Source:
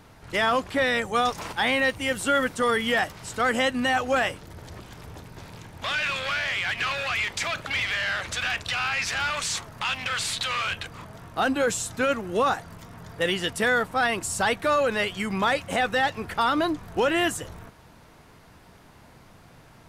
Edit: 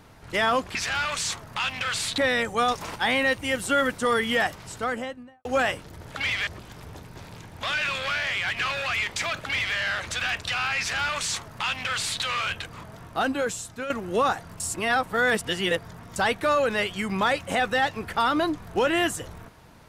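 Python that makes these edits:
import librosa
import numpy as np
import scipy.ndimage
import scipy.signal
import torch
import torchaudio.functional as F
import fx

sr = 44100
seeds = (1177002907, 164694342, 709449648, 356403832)

y = fx.studio_fade_out(x, sr, start_s=3.11, length_s=0.91)
y = fx.edit(y, sr, fx.duplicate(start_s=7.61, length_s=0.36, to_s=4.68),
    fx.duplicate(start_s=9.0, length_s=1.43, to_s=0.75),
    fx.fade_out_to(start_s=11.28, length_s=0.83, floor_db=-10.5),
    fx.reverse_span(start_s=12.81, length_s=1.56), tone=tone)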